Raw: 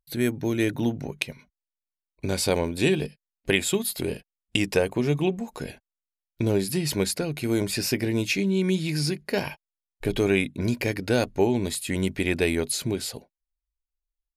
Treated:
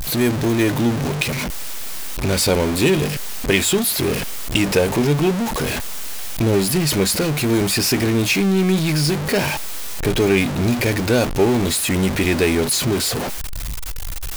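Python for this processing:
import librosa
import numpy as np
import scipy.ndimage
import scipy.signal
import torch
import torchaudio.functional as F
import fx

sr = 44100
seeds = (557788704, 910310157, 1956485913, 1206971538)

y = x + 0.5 * 10.0 ** (-21.0 / 20.0) * np.sign(x)
y = F.gain(torch.from_numpy(y), 3.0).numpy()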